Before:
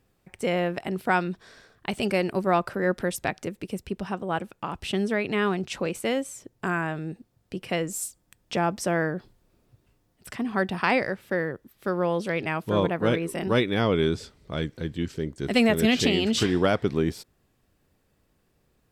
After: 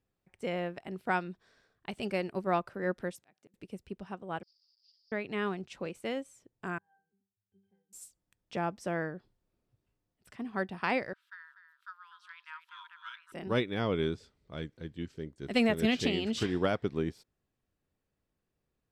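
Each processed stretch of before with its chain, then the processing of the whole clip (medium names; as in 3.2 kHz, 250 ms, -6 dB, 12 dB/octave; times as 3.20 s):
3.12–3.54 s: high-pass 130 Hz + slow attack 682 ms
4.43–5.12 s: one-bit delta coder 32 kbps, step -32 dBFS + Butterworth band-pass 4.9 kHz, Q 7.7
6.78–7.93 s: compression 1.5:1, threshold -56 dBFS + pitch-class resonator G, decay 0.37 s
11.13–13.32 s: rippled Chebyshev high-pass 930 Hz, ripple 9 dB + peaking EQ 1.6 kHz +9 dB 0.36 oct + delay 245 ms -9 dB
whole clip: treble shelf 9.1 kHz -7.5 dB; upward expansion 1.5:1, over -37 dBFS; trim -5.5 dB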